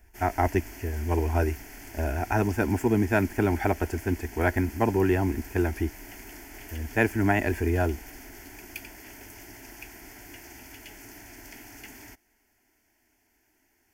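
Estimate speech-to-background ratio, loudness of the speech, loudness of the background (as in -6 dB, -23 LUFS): 17.0 dB, -27.0 LUFS, -44.0 LUFS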